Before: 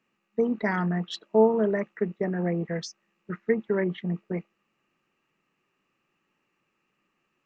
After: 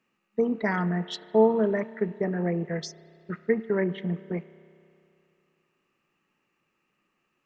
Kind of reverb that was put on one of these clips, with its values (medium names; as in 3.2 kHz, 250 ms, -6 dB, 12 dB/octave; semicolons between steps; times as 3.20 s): spring tank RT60 2.6 s, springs 31 ms, chirp 45 ms, DRR 15.5 dB